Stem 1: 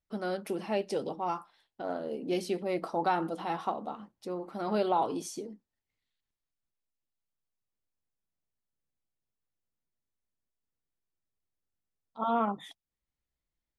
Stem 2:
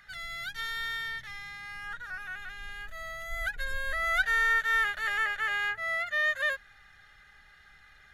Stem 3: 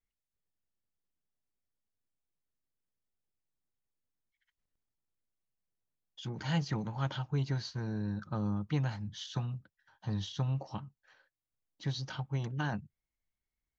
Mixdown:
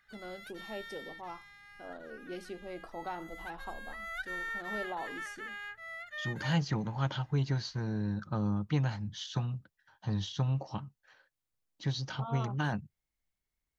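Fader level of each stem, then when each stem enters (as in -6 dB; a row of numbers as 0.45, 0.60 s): -11.5, -13.0, +2.0 dB; 0.00, 0.00, 0.00 s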